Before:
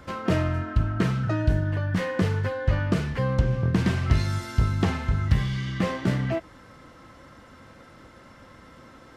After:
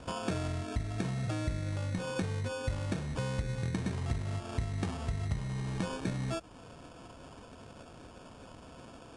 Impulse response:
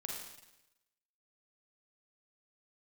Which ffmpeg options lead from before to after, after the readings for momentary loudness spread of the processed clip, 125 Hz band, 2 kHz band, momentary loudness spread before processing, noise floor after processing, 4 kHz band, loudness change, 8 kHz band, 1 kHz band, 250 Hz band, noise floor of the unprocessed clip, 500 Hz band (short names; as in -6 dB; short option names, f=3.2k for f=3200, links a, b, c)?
16 LU, -10.0 dB, -10.5 dB, 3 LU, -52 dBFS, -6.5 dB, -10.0 dB, -1.5 dB, -8.5 dB, -10.0 dB, -50 dBFS, -9.0 dB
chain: -af "acrusher=samples=22:mix=1:aa=0.000001,acompressor=threshold=-32dB:ratio=3,volume=-1.5dB" -ar 22050 -c:a aac -b:a 96k